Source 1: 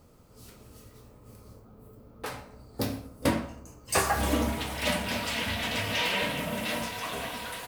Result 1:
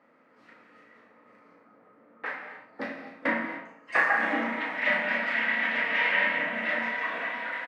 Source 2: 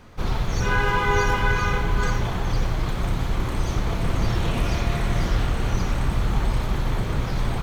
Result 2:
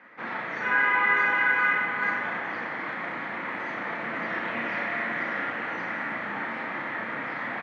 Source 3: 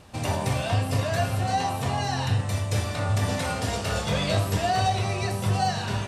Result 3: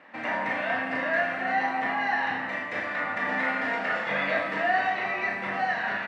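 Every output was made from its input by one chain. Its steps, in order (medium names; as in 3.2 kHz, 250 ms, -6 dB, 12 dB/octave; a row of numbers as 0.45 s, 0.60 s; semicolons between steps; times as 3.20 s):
high-pass 240 Hz 24 dB/octave; peaking EQ 400 Hz -12 dB 0.2 oct; in parallel at -11 dB: saturation -26 dBFS; on the sum: resonant low-pass 1.9 kHz, resonance Q 5.1; doubling 35 ms -5 dB; gated-style reverb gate 300 ms flat, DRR 6.5 dB; normalise loudness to -27 LUFS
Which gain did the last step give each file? -5.0 dB, -7.5 dB, -5.0 dB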